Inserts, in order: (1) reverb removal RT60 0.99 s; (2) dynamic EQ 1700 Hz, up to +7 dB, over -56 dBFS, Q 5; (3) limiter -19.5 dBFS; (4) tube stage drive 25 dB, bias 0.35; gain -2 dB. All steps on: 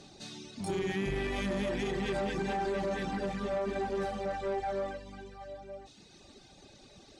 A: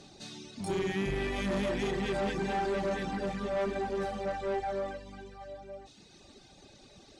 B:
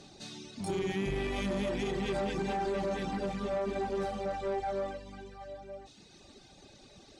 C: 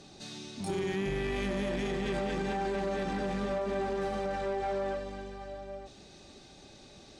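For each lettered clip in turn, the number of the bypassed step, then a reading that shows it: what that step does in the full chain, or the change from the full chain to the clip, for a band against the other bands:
3, momentary loudness spread change +1 LU; 2, 2 kHz band -2.5 dB; 1, momentary loudness spread change +6 LU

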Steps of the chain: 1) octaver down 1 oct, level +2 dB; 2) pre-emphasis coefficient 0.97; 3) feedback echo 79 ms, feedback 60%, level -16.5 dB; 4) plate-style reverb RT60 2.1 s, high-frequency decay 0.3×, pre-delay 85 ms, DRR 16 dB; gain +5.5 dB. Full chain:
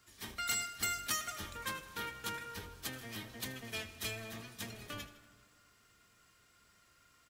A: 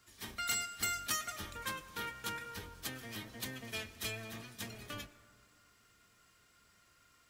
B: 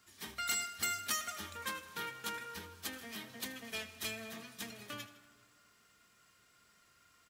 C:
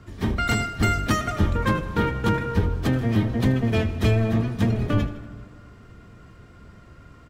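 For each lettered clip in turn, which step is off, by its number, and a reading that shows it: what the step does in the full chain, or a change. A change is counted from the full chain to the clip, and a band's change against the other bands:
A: 3, echo-to-direct -12.0 dB to -16.0 dB; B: 1, 125 Hz band -6.5 dB; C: 2, 8 kHz band -19.0 dB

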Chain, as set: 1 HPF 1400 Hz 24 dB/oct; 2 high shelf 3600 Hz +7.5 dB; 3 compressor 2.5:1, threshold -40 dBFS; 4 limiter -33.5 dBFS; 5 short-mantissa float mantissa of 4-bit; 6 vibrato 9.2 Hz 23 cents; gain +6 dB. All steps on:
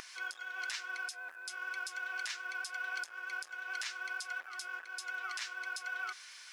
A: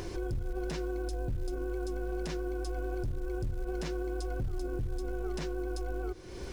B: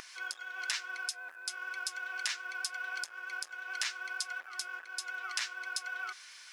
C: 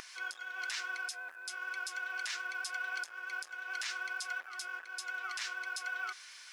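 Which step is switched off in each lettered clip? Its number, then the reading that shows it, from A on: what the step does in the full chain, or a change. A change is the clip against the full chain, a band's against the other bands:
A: 1, 500 Hz band +30.5 dB; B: 4, crest factor change +8.5 dB; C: 3, loudness change +1.0 LU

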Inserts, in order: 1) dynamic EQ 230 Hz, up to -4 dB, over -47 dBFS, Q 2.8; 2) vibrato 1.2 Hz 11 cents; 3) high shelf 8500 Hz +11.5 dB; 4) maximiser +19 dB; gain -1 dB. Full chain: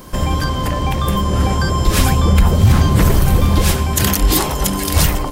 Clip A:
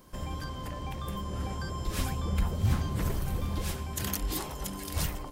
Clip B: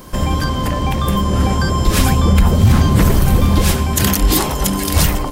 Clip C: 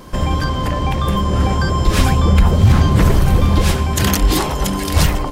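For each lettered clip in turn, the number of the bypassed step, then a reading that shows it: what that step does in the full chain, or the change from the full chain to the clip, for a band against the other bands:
4, crest factor change +6.0 dB; 1, 250 Hz band +2.0 dB; 3, 8 kHz band -4.5 dB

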